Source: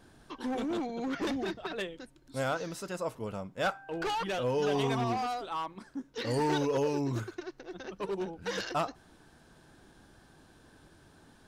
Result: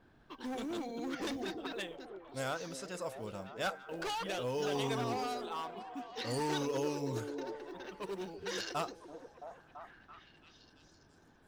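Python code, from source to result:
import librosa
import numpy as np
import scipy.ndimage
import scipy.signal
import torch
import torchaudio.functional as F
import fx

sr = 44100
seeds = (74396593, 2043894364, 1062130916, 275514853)

y = fx.env_lowpass(x, sr, base_hz=2000.0, full_db=-31.5)
y = fx.high_shelf(y, sr, hz=3000.0, db=8.0)
y = fx.quant_float(y, sr, bits=4)
y = fx.echo_stepped(y, sr, ms=334, hz=350.0, octaves=0.7, feedback_pct=70, wet_db=-5)
y = y * librosa.db_to_amplitude(-6.5)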